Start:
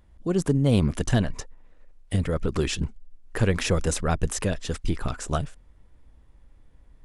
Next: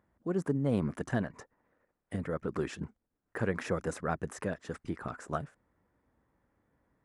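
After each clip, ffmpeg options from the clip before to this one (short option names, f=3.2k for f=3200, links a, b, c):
-af "highpass=150,highshelf=f=2.3k:t=q:w=1.5:g=-9.5,volume=-7dB"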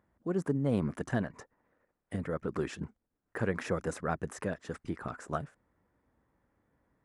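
-af anull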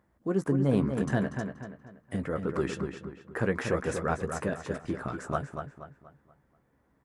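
-filter_complex "[0:a]asplit=2[a][b];[b]adelay=15,volume=-9.5dB[c];[a][c]amix=inputs=2:normalize=0,asplit=2[d][e];[e]adelay=239,lowpass=f=4k:p=1,volume=-6.5dB,asplit=2[f][g];[g]adelay=239,lowpass=f=4k:p=1,volume=0.39,asplit=2[h][i];[i]adelay=239,lowpass=f=4k:p=1,volume=0.39,asplit=2[j][k];[k]adelay=239,lowpass=f=4k:p=1,volume=0.39,asplit=2[l][m];[m]adelay=239,lowpass=f=4k:p=1,volume=0.39[n];[f][h][j][l][n]amix=inputs=5:normalize=0[o];[d][o]amix=inputs=2:normalize=0,volume=3dB"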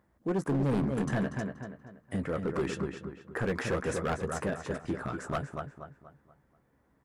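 -af "asoftclip=type=hard:threshold=-24.5dB"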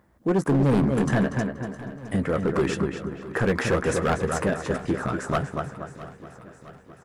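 -af "aecho=1:1:663|1326|1989|2652|3315:0.141|0.0819|0.0475|0.0276|0.016,volume=8dB"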